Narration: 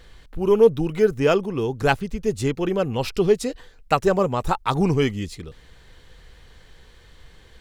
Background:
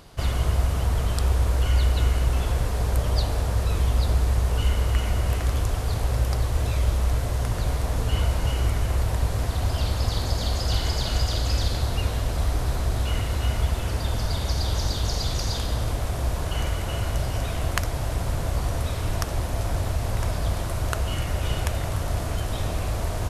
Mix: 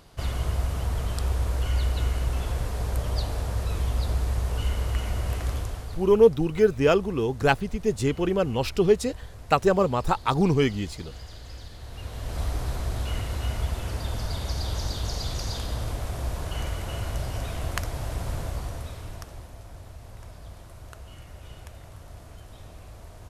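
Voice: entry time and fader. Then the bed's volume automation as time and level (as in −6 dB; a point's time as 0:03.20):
5.60 s, −1.5 dB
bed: 0:05.52 −4.5 dB
0:06.27 −18.5 dB
0:11.77 −18.5 dB
0:12.40 −4.5 dB
0:18.38 −4.5 dB
0:19.63 −18 dB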